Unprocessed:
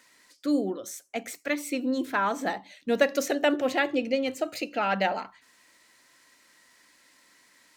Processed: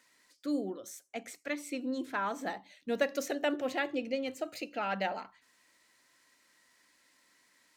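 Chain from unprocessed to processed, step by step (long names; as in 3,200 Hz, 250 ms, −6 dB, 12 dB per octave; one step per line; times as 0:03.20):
0:01.07–0:02.24: low-pass filter 12,000 Hz 12 dB per octave
level −7.5 dB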